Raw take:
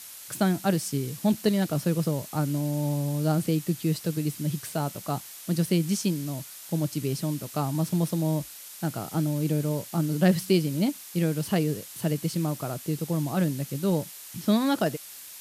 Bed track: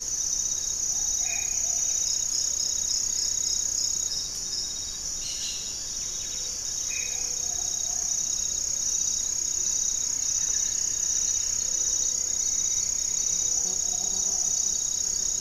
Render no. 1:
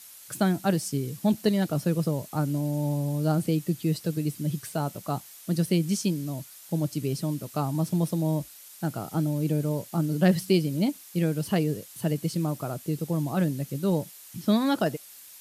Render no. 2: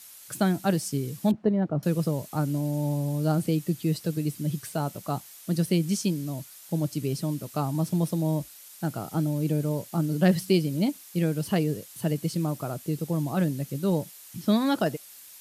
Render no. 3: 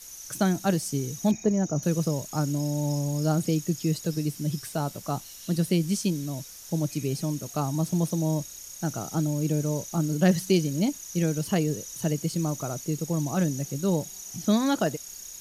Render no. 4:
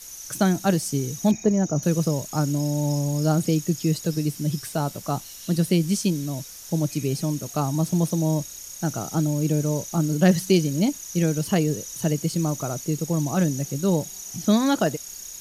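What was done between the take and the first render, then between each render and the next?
broadband denoise 6 dB, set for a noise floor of −44 dBFS
0:01.31–0:01.83: low-pass filter 1,100 Hz
mix in bed track −15.5 dB
level +3.5 dB

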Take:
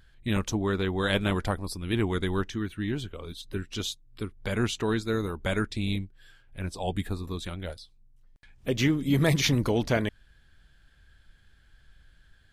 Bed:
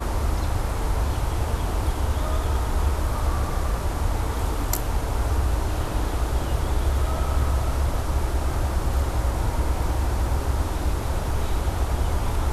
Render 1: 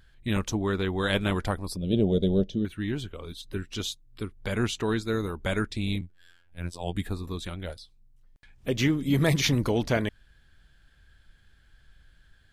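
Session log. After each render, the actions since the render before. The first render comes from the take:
0:01.76–0:02.65: drawn EQ curve 110 Hz 0 dB, 190 Hz +9 dB, 310 Hz −1 dB, 580 Hz +14 dB, 990 Hz −20 dB, 1,900 Hz −23 dB, 3,400 Hz 0 dB, 8,300 Hz −14 dB
0:06.01–0:06.95: phases set to zero 86.9 Hz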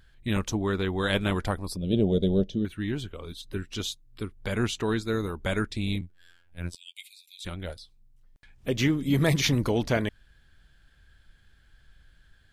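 0:06.75–0:07.45: Chebyshev high-pass filter 2,100 Hz, order 10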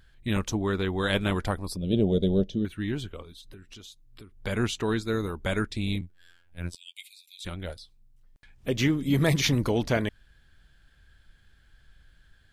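0:03.22–0:04.38: downward compressor 8 to 1, threshold −43 dBFS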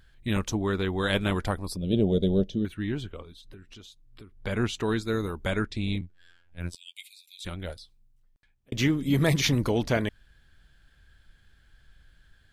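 0:02.74–0:04.74: high-shelf EQ 5,600 Hz −8 dB
0:05.50–0:06.60: high-frequency loss of the air 51 metres
0:07.75–0:08.72: fade out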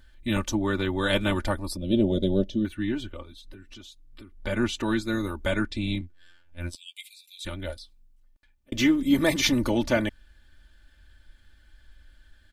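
comb filter 3.4 ms, depth 80%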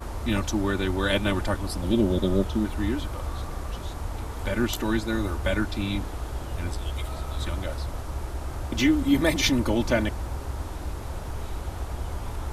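mix in bed −8.5 dB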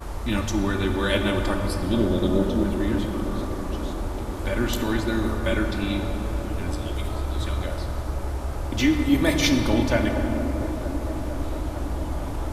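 delay with a band-pass on its return 456 ms, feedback 82%, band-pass 540 Hz, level −10.5 dB
rectangular room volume 220 cubic metres, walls hard, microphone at 0.33 metres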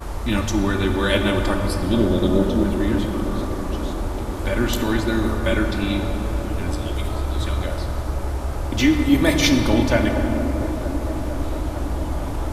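level +3.5 dB

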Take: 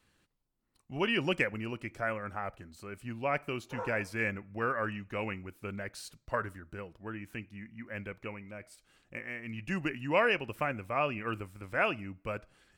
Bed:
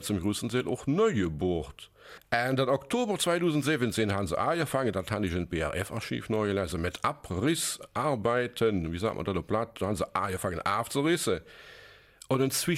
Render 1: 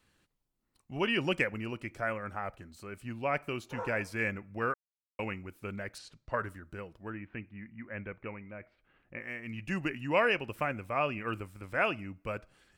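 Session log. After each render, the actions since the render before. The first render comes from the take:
0:04.74–0:05.19: silence
0:05.98–0:06.39: high-frequency loss of the air 92 metres
0:07.10–0:09.21: low-pass filter 2,500 Hz 24 dB per octave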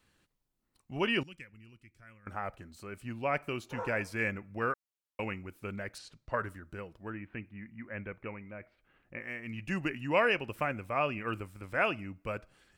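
0:01.23–0:02.27: guitar amp tone stack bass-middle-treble 6-0-2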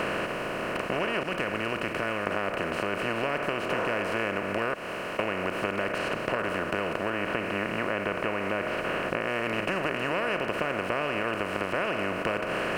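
compressor on every frequency bin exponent 0.2
downward compressor, threshold −25 dBFS, peak gain reduction 8.5 dB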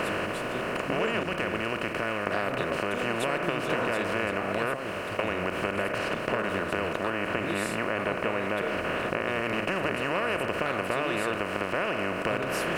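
mix in bed −10 dB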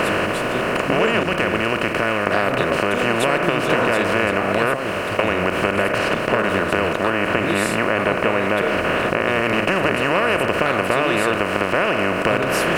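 level +10 dB
brickwall limiter −3 dBFS, peak gain reduction 2.5 dB

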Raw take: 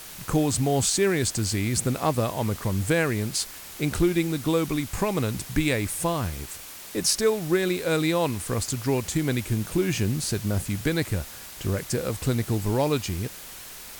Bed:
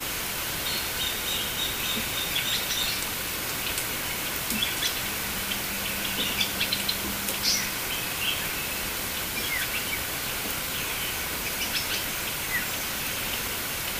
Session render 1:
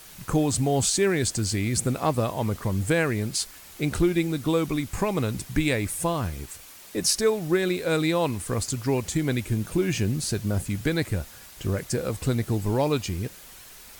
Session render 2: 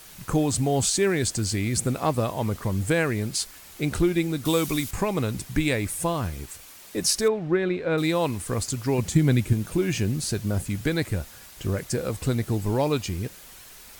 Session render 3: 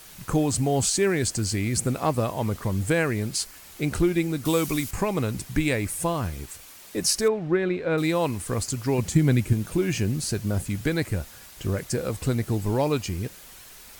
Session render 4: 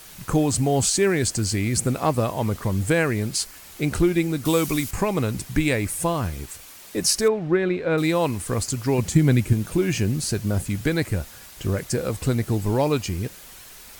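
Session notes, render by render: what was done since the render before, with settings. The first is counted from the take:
broadband denoise 6 dB, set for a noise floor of −42 dBFS
0:04.45–0:04.91: high-shelf EQ 3,300 Hz +12 dB; 0:07.28–0:07.98: low-pass filter 2,300 Hz; 0:08.98–0:09.53: parametric band 150 Hz +8.5 dB 1.5 octaves
dynamic equaliser 3,600 Hz, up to −5 dB, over −50 dBFS, Q 6.7
level +2.5 dB

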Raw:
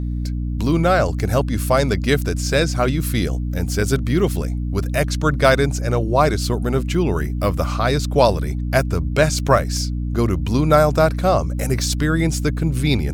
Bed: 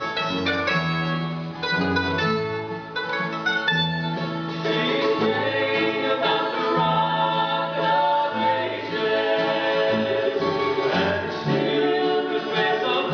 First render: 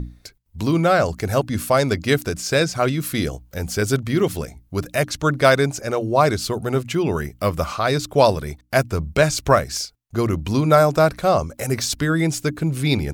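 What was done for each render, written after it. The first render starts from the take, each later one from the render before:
mains-hum notches 60/120/180/240/300 Hz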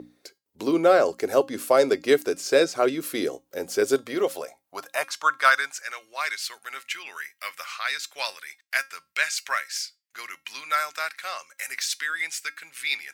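high-pass filter sweep 390 Hz → 1,900 Hz, 0:03.84–0:05.98
tuned comb filter 270 Hz, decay 0.22 s, harmonics all, mix 50%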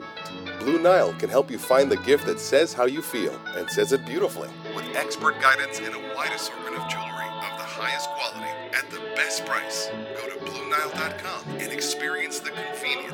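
mix in bed −11.5 dB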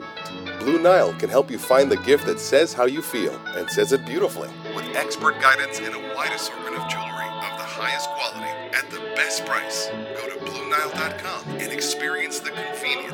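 level +2.5 dB

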